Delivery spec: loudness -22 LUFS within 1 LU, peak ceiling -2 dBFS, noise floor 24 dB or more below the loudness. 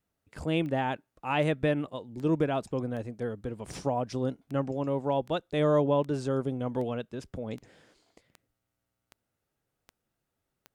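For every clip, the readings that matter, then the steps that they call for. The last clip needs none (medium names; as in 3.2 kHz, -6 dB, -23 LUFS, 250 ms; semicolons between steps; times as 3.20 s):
clicks found 14; loudness -30.5 LUFS; peak level -14.5 dBFS; loudness target -22.0 LUFS
-> de-click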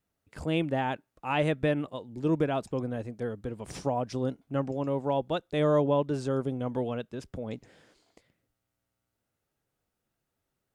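clicks found 0; loudness -30.5 LUFS; peak level -14.5 dBFS; loudness target -22.0 LUFS
-> trim +8.5 dB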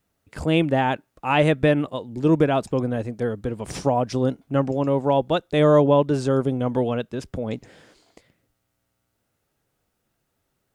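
loudness -22.0 LUFS; peak level -6.0 dBFS; noise floor -75 dBFS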